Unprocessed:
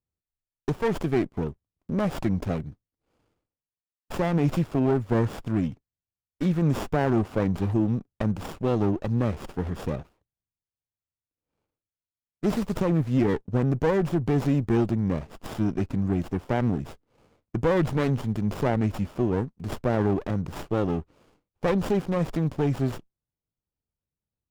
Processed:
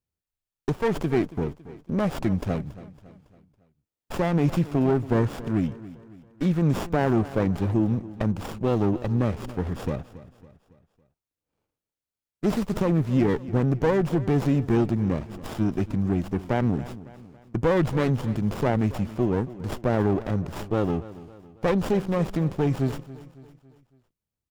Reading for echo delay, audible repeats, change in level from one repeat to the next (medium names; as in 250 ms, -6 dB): 278 ms, 3, -6.5 dB